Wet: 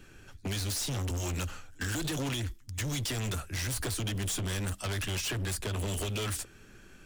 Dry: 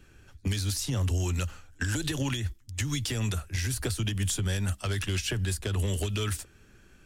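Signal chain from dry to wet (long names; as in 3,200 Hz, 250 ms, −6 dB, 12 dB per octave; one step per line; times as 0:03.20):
parametric band 67 Hz −7 dB 1.2 octaves
hard clipping −35 dBFS, distortion −7 dB
level +4 dB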